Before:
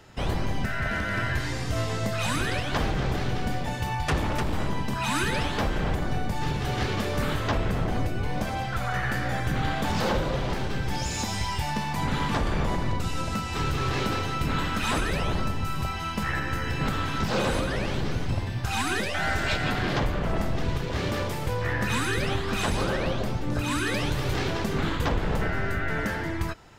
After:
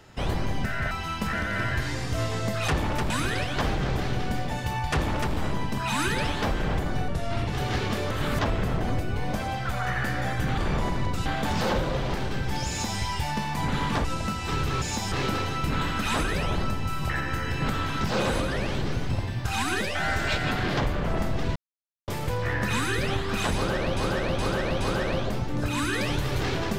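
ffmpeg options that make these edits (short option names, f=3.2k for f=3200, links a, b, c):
-filter_complex "[0:a]asplit=20[a][b][c][d][e][f][g][h][i][j][k][l][m][n][o][p][q][r][s][t];[a]atrim=end=0.912[u];[b]atrim=start=15.868:end=16.292[v];[c]atrim=start=0.908:end=2.262[w];[d]atrim=start=4.078:end=4.502[x];[e]atrim=start=2.258:end=6.244[y];[f]atrim=start=6.24:end=6.55,asetpts=PTS-STARTPTS,asetrate=34398,aresample=44100[z];[g]atrim=start=6.546:end=7.182[aa];[h]atrim=start=7.178:end=7.462,asetpts=PTS-STARTPTS,areverse[ab];[i]atrim=start=7.458:end=9.652[ac];[j]atrim=start=12.438:end=13.122[ad];[k]atrim=start=9.648:end=12.442[ae];[l]atrim=start=13.118:end=13.892[af];[m]atrim=start=11.078:end=11.382[ag];[n]atrim=start=13.888:end=15.872[ah];[o]atrim=start=16.288:end=20.75,asetpts=PTS-STARTPTS,afade=t=out:st=4.458:d=0.004:c=hsin[ai];[p]atrim=start=20.75:end=21.27,asetpts=PTS-STARTPTS,volume=0[aj];[q]atrim=start=21.27:end=23.162,asetpts=PTS-STARTPTS,afade=t=in:d=0.004:c=hsin[ak];[r]atrim=start=22.738:end=23.162[al];[s]atrim=start=22.738:end=23.162[am];[t]atrim=start=22.738[an];[u][v]acrossfade=d=0.004:c1=hsin:c2=hsin[ao];[ao][w]acrossfade=d=0.004:c1=hsin:c2=hsin[ap];[ap][x]acrossfade=d=0.004:c1=hsin:c2=hsin[aq];[aq][y]acrossfade=d=0.004:c1=hsin:c2=hsin[ar];[ar][z]acrossfade=d=0.004:c1=hsin:c2=hsin[as];[as][aa]acrossfade=d=0.004:c1=hsin:c2=hsin[at];[at][ab]acrossfade=d=0.004:c1=hsin:c2=hsin[au];[au][ac]acrossfade=d=0.004:c1=hsin:c2=hsin[av];[av][ad]acrossfade=d=0.004:c1=hsin:c2=hsin[aw];[aw][ae]acrossfade=d=0.004:c1=hsin:c2=hsin[ax];[ax][af]acrossfade=d=0.004:c1=hsin:c2=hsin[ay];[ay][ag]acrossfade=d=0.004:c1=hsin:c2=hsin[az];[az][ah]acrossfade=d=0.004:c1=hsin:c2=hsin[ba];[ai][aj][ak]concat=n=3:v=0:a=1[bb];[ba][bb]acrossfade=d=0.004:c1=hsin:c2=hsin[bc];[bc][al]acrossfade=d=0.004:c1=hsin:c2=hsin[bd];[bd][am]acrossfade=d=0.004:c1=hsin:c2=hsin[be];[be][an]acrossfade=d=0.004:c1=hsin:c2=hsin"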